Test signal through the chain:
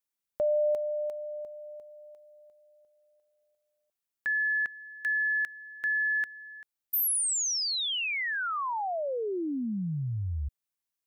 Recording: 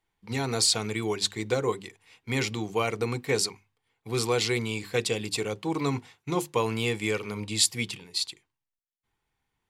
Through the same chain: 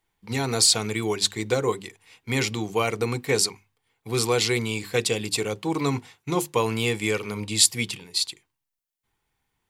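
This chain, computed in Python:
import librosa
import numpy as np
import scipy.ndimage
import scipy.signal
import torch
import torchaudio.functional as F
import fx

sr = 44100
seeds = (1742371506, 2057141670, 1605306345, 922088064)

y = fx.high_shelf(x, sr, hz=8400.0, db=6.0)
y = F.gain(torch.from_numpy(y), 3.0).numpy()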